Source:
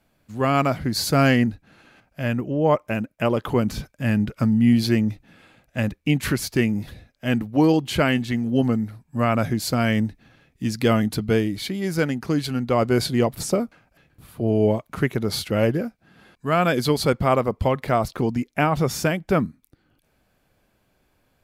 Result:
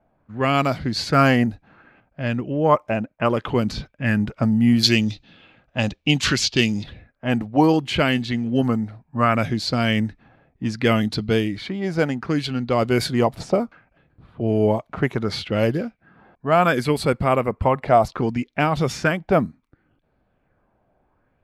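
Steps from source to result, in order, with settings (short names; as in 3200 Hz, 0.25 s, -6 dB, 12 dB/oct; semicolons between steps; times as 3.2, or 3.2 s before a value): low-pass opened by the level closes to 1300 Hz, open at -15.5 dBFS; 4.83–6.84 band shelf 4500 Hz +12 dB; 16.83–17.85 spectral gain 2900–7300 Hz -8 dB; LFO bell 0.67 Hz 680–4300 Hz +8 dB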